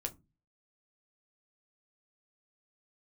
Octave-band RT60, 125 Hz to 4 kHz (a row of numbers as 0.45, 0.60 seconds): 0.50, 0.40, 0.25, 0.20, 0.15, 0.15 seconds